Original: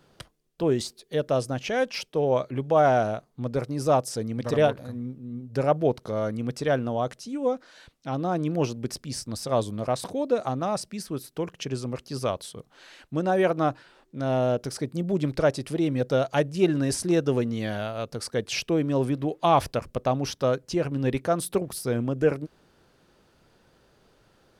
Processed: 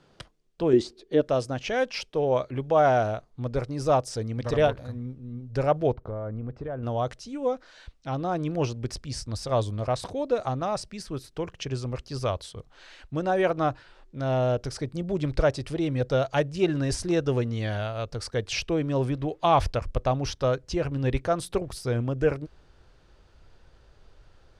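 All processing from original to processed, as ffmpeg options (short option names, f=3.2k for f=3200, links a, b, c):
-filter_complex "[0:a]asettb=1/sr,asplit=3[a][b][c];[a]atrim=end=0.734[d];[b]atrim=start=0.73:end=1.21,asetpts=PTS-STARTPTS,afade=t=in:d=0.004:c=qsin,afade=t=out:st=0.476:d=0.004:c=qsin,lowpass=f=3.6k:p=1,equalizer=f=330:t=o:w=0.68:g=13.5[e];[c]atrim=start=1.206[f];[d][e]acrossfade=d=0.004:c1=hsin:c2=qsin[g];[g][f]acrossfade=d=0.004:c1=qsin:c2=hsin,asettb=1/sr,asplit=3[h][i][j];[h]atrim=end=5.934[k];[i]atrim=start=5.93:end=6.83,asetpts=PTS-STARTPTS,afade=t=in:d=0.004:c=qsin,afade=t=out:st=0.896:d=0.004:c=qsin,lowpass=1.2k,acompressor=threshold=-29dB:ratio=6:attack=3.2:release=140:knee=1:detection=peak[l];[j]atrim=start=6.826[m];[k][l]acrossfade=d=0.004:c1=hsin:c2=qsin[n];[n][m]acrossfade=d=0.004:c1=qsin:c2=hsin,lowpass=7.2k,asubboost=boost=8.5:cutoff=66"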